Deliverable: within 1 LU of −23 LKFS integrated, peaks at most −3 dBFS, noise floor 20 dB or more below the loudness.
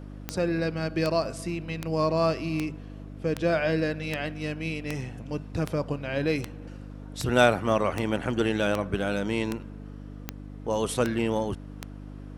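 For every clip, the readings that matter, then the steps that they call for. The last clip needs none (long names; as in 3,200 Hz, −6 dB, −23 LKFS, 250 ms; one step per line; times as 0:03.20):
number of clicks 16; mains hum 50 Hz; hum harmonics up to 300 Hz; level of the hum −38 dBFS; integrated loudness −28.0 LKFS; sample peak −5.5 dBFS; target loudness −23.0 LKFS
→ click removal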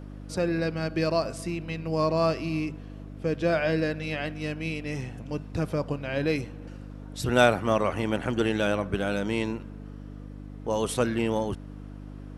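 number of clicks 0; mains hum 50 Hz; hum harmonics up to 300 Hz; level of the hum −38 dBFS
→ hum removal 50 Hz, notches 6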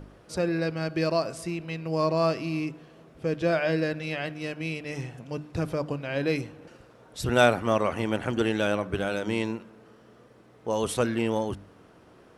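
mains hum none found; integrated loudness −28.0 LKFS; sample peak −5.5 dBFS; target loudness −23.0 LKFS
→ level +5 dB
brickwall limiter −3 dBFS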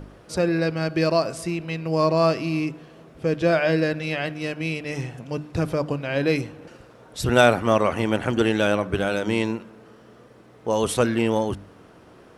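integrated loudness −23.5 LKFS; sample peak −3.0 dBFS; background noise floor −50 dBFS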